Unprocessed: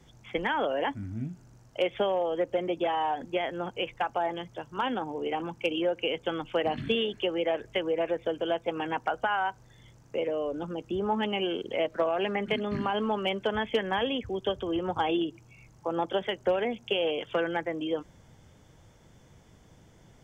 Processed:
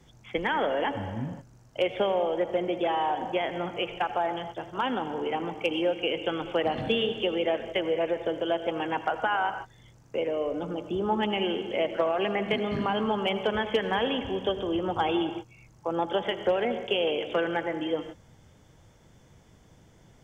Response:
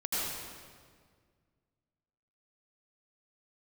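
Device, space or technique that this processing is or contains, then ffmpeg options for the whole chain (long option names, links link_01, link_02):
keyed gated reverb: -filter_complex "[0:a]asplit=3[link_01][link_02][link_03];[1:a]atrim=start_sample=2205[link_04];[link_02][link_04]afir=irnorm=-1:irlink=0[link_05];[link_03]apad=whole_len=892263[link_06];[link_05][link_06]sidechaingate=range=-33dB:threshold=-45dB:ratio=16:detection=peak,volume=-14.5dB[link_07];[link_01][link_07]amix=inputs=2:normalize=0"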